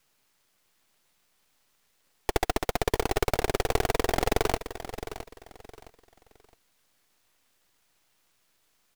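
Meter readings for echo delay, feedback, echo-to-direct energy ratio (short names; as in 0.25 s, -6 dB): 0.664 s, 28%, -11.5 dB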